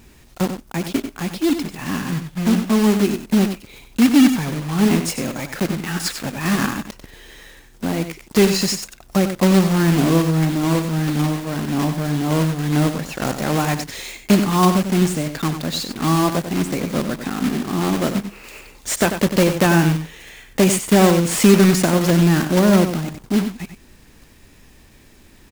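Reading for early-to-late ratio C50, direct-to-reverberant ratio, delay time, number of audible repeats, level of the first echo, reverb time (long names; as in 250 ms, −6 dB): no reverb audible, no reverb audible, 94 ms, 1, −9.0 dB, no reverb audible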